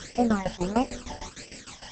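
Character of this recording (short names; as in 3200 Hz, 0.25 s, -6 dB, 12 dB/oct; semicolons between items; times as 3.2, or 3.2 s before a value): a quantiser's noise floor 8-bit, dither triangular; tremolo saw down 6.6 Hz, depth 85%; phasing stages 12, 1.5 Hz, lowest notch 400–1300 Hz; Opus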